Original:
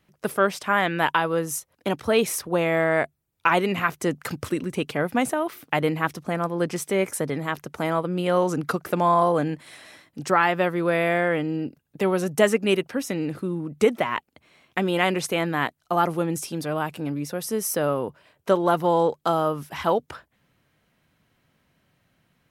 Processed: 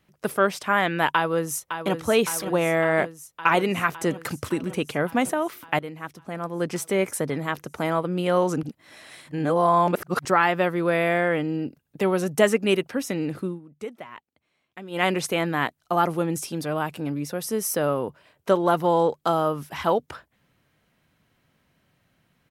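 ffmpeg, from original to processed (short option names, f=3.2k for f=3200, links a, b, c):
-filter_complex "[0:a]asplit=2[a][b];[b]afade=t=in:st=1.13:d=0.01,afade=t=out:st=1.99:d=0.01,aecho=0:1:560|1120|1680|2240|2800|3360|3920|4480|5040|5600|6160|6720:0.354813|0.26611|0.199583|0.149687|0.112265|0.0841989|0.0631492|0.0473619|0.0355214|0.0266411|0.0199808|0.0149856[c];[a][c]amix=inputs=2:normalize=0,asplit=6[d][e][f][g][h][i];[d]atrim=end=5.79,asetpts=PTS-STARTPTS,afade=t=out:st=5.786:d=0.004:c=hsin:silence=0.223872[j];[e]atrim=start=5.79:end=8.632,asetpts=PTS-STARTPTS,afade=t=in:d=0.98:c=qua:silence=0.223872[k];[f]atrim=start=8.628:end=10.252,asetpts=PTS-STARTPTS,areverse[l];[g]atrim=start=10.248:end=13.6,asetpts=PTS-STARTPTS,afade=t=out:st=3.212:d=0.14:silence=0.16788[m];[h]atrim=start=13.6:end=14.9,asetpts=PTS-STARTPTS,volume=-15.5dB[n];[i]atrim=start=14.9,asetpts=PTS-STARTPTS,afade=t=in:d=0.14:silence=0.16788[o];[j][k]concat=n=2:v=0:a=1[p];[p][l]acrossfade=d=0.004:c1=hsin:c2=hsin[q];[m][n][o]concat=n=3:v=0:a=1[r];[q][r]acrossfade=d=0.004:c1=hsin:c2=hsin"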